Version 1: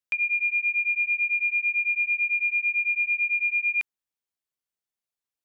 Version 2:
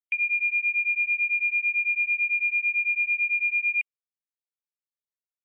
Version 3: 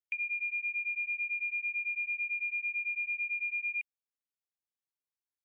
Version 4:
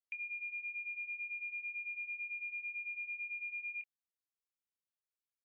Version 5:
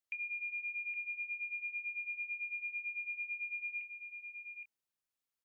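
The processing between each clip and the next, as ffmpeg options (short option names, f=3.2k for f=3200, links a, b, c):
-af "afftdn=nr=32:nf=-39"
-af "acompressor=threshold=-25dB:ratio=6,volume=-6.5dB"
-filter_complex "[0:a]asplit=2[a][b];[b]adelay=26,volume=-10dB[c];[a][c]amix=inputs=2:normalize=0,volume=-8dB"
-af "aecho=1:1:818:0.422,volume=2dB"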